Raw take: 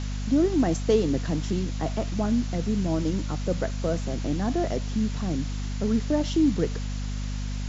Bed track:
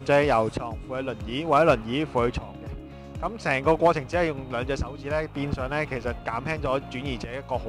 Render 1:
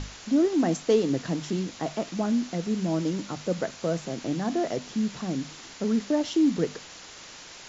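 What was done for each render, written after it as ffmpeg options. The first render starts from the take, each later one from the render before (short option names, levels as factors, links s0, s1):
-af "bandreject=f=50:t=h:w=6,bandreject=f=100:t=h:w=6,bandreject=f=150:t=h:w=6,bandreject=f=200:t=h:w=6,bandreject=f=250:t=h:w=6"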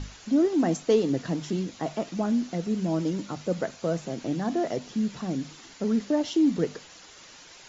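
-af "afftdn=nr=7:nf=-45"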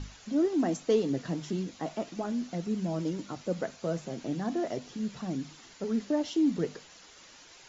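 -af "flanger=delay=0.7:depth=4.8:regen=-72:speed=0.37:shape=triangular"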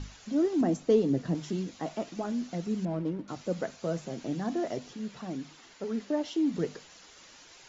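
-filter_complex "[0:a]asettb=1/sr,asplit=3[s0][s1][s2];[s0]atrim=end=0.614[s3];[s1]atrim=start=0.61:end=1.35,asetpts=PTS-STARTPTS,afade=t=in:d=0.004:c=qsin,afade=t=out:st=0.736:d=0.004:c=qsin,tiltshelf=f=690:g=4.5[s4];[s2]atrim=start=1.346[s5];[s3][s4]acrossfade=d=0.004:c1=hsin:c2=qsin[s6];[s6][s5]acrossfade=d=0.004:c1=qsin:c2=hsin,asettb=1/sr,asplit=3[s7][s8][s9];[s7]atrim=end=2.854[s10];[s8]atrim=start=2.85:end=3.28,asetpts=PTS-STARTPTS,afade=t=in:d=0.004:c=qsin,afade=t=out:st=0.426:d=0.004:c=qsin,adynamicsmooth=sensitivity=4:basefreq=1300[s11];[s9]atrim=start=3.276[s12];[s10][s11]acrossfade=d=0.004:c1=hsin:c2=qsin[s13];[s13][s12]acrossfade=d=0.004:c1=qsin:c2=hsin,asettb=1/sr,asplit=3[s14][s15][s16];[s14]atrim=end=4.934[s17];[s15]atrim=start=4.93:end=6.54,asetpts=PTS-STARTPTS,afade=t=in:d=0.004:c=qsin,afade=t=out:st=1.606:d=0.004:c=qsin,bass=f=250:g=-6,treble=f=4000:g=-4[s18];[s16]atrim=start=6.536[s19];[s17][s18]acrossfade=d=0.004:c1=hsin:c2=qsin[s20];[s20][s19]acrossfade=d=0.004:c1=qsin:c2=hsin"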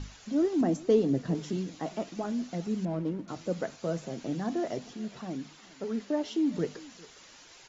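-af "aecho=1:1:405:0.0794"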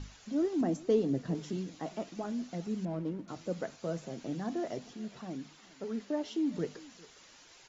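-af "volume=0.631"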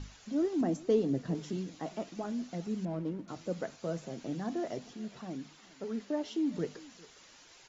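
-af anull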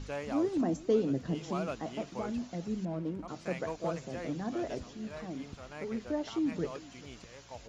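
-filter_complex "[1:a]volume=0.119[s0];[0:a][s0]amix=inputs=2:normalize=0"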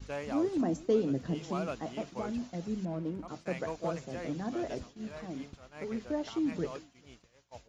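-af "agate=range=0.0224:threshold=0.01:ratio=3:detection=peak"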